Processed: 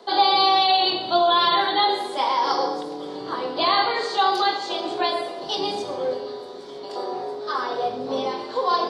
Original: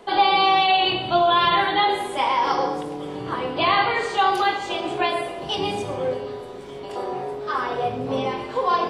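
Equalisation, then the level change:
three-way crossover with the lows and the highs turned down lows −18 dB, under 220 Hz, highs −16 dB, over 4,000 Hz
high shelf with overshoot 3,400 Hz +9 dB, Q 3
0.0 dB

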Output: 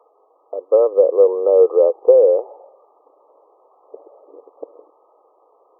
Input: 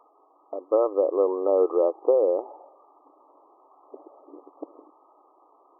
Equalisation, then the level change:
high-pass with resonance 480 Hz, resonance Q 4.9
−2.5 dB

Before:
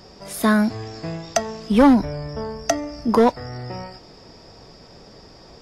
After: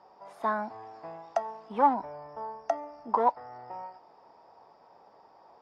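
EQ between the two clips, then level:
resonant band-pass 880 Hz, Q 3.7
0.0 dB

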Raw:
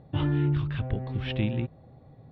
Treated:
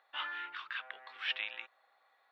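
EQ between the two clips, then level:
four-pole ladder high-pass 1,100 Hz, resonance 35%
+8.0 dB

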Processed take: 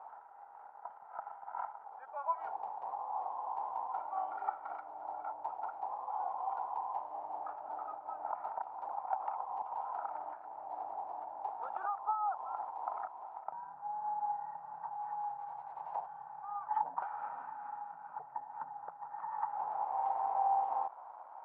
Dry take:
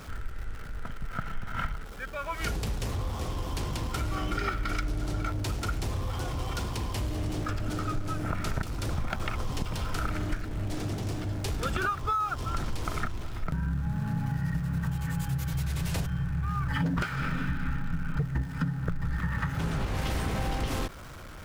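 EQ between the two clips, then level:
flat-topped band-pass 840 Hz, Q 4.2
+10.0 dB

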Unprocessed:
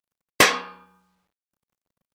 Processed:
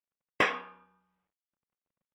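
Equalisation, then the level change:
Savitzky-Golay smoothing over 25 samples
low-shelf EQ 170 Hz −3 dB
−9.0 dB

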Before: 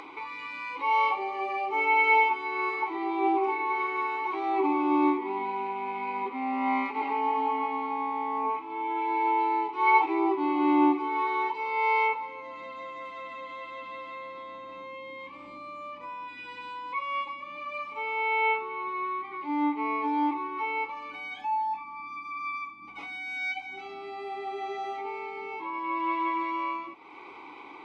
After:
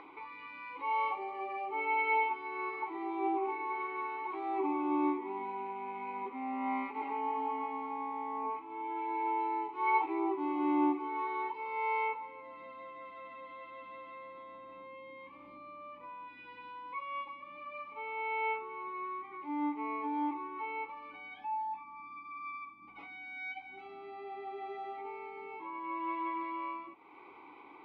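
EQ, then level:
high-frequency loss of the air 290 metres
−6.5 dB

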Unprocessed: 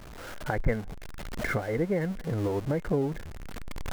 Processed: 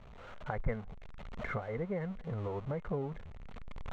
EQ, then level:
high-frequency loss of the air 170 metres
dynamic equaliser 1,200 Hz, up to +6 dB, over −49 dBFS, Q 1.9
thirty-one-band graphic EQ 315 Hz −12 dB, 1,600 Hz −6 dB, 5,000 Hz −8 dB
−7.0 dB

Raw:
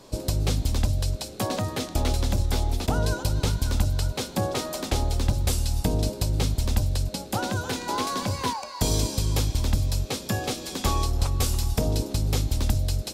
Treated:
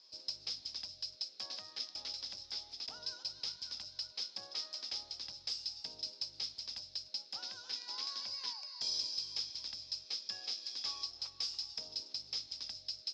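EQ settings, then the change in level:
resonant band-pass 5,100 Hz, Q 14
high-frequency loss of the air 200 metres
+13.5 dB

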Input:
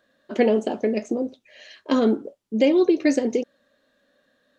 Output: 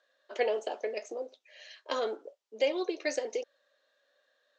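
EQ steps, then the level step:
high-pass filter 470 Hz 24 dB per octave
low-pass filter 6,900 Hz 24 dB per octave
high-shelf EQ 4,600 Hz +6 dB
−6.5 dB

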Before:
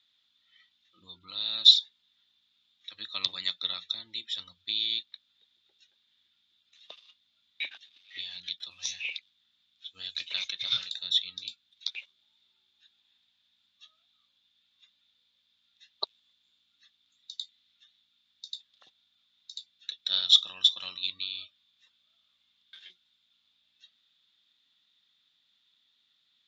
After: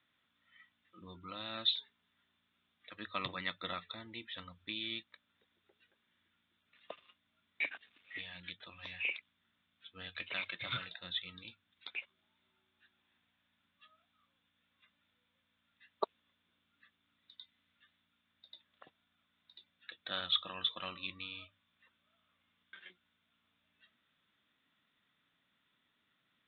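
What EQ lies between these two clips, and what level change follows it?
Bessel low-pass filter 1,500 Hz, order 8
parametric band 840 Hz −4.5 dB 0.32 octaves
mains-hum notches 50/100 Hz
+8.5 dB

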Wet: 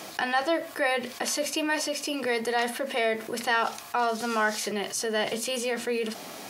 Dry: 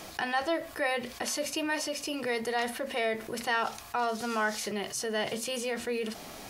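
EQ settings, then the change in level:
high-pass filter 170 Hz 12 dB per octave
+4.0 dB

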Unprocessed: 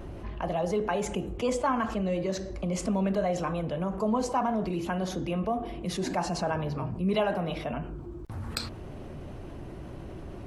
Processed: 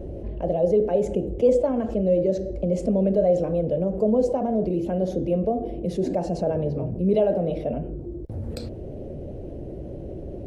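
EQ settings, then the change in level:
parametric band 62 Hz +2.5 dB
low shelf with overshoot 770 Hz +12.5 dB, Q 3
−8.5 dB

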